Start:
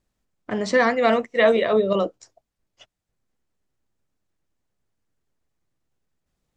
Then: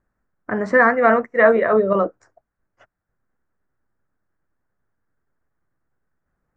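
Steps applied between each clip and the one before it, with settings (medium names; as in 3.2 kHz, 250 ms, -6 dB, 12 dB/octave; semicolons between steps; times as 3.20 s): resonant high shelf 2.3 kHz -13.5 dB, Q 3; trim +2 dB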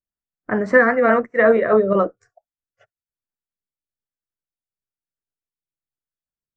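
rotary cabinet horn 5 Hz, later 1.1 Hz, at 1.57 s; spectral noise reduction 26 dB; trim +3 dB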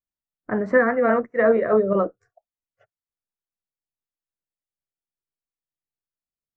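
treble shelf 2.2 kHz -10.5 dB; trim -2.5 dB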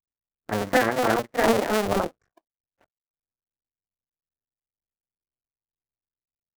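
cycle switcher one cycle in 2, muted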